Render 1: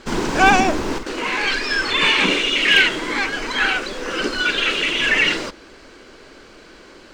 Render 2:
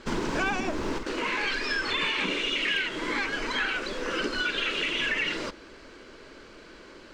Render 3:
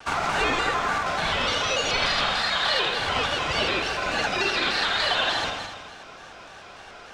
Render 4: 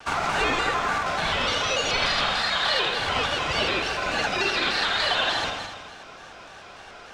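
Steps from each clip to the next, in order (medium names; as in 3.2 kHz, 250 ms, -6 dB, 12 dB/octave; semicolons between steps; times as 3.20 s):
treble shelf 7.5 kHz -7.5 dB; band-stop 760 Hz, Q 12; compression 6:1, threshold -21 dBFS, peak gain reduction 11 dB; trim -4 dB
ring modulator 1.1 kHz; on a send: multi-head delay 81 ms, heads first and second, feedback 52%, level -8 dB; on the sum: vibrato with a chosen wave square 3.4 Hz, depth 100 cents; trim +5.5 dB
rattle on loud lows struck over -38 dBFS, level -31 dBFS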